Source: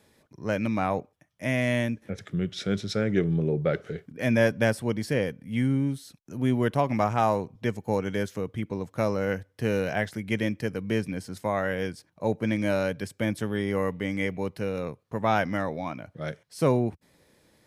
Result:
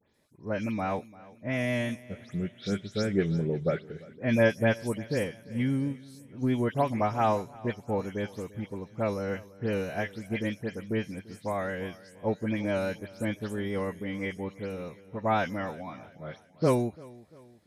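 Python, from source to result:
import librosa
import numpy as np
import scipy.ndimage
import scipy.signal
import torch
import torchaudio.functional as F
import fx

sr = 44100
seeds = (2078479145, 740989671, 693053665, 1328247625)

y = fx.spec_delay(x, sr, highs='late', ms=141)
y = fx.vibrato(y, sr, rate_hz=6.0, depth_cents=22.0)
y = fx.echo_feedback(y, sr, ms=344, feedback_pct=48, wet_db=-16.0)
y = fx.upward_expand(y, sr, threshold_db=-35.0, expansion=1.5)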